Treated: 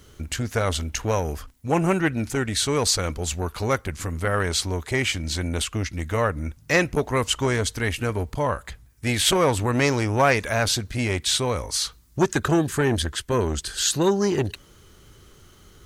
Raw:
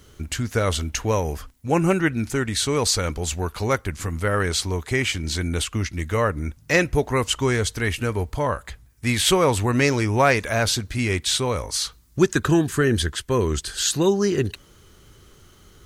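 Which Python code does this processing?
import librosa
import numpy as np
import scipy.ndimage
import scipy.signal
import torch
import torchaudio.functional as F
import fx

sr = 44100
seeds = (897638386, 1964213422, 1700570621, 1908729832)

y = fx.transformer_sat(x, sr, knee_hz=550.0)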